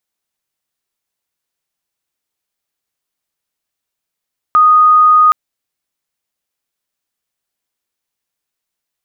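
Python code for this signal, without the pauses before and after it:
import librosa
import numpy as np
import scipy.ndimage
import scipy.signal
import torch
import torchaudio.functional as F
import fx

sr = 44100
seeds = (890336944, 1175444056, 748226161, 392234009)

y = 10.0 ** (-4.5 / 20.0) * np.sin(2.0 * np.pi * (1240.0 * (np.arange(round(0.77 * sr)) / sr)))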